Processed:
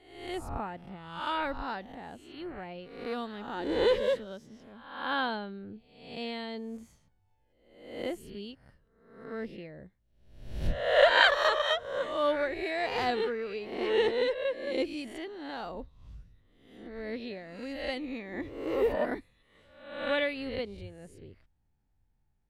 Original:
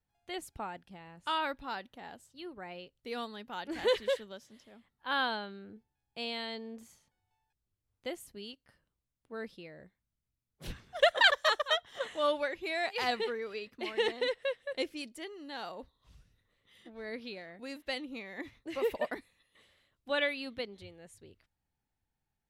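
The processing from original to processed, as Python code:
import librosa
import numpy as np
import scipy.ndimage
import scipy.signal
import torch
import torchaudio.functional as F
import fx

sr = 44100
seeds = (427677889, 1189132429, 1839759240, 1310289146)

y = fx.spec_swells(x, sr, rise_s=0.75)
y = fx.tilt_eq(y, sr, slope=-2.5)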